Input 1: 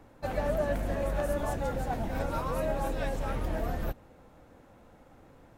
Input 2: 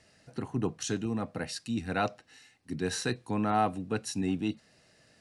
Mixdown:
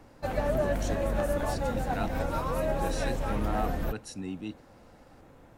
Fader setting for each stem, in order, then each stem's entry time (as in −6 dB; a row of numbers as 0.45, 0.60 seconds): +1.5, −6.5 decibels; 0.00, 0.00 seconds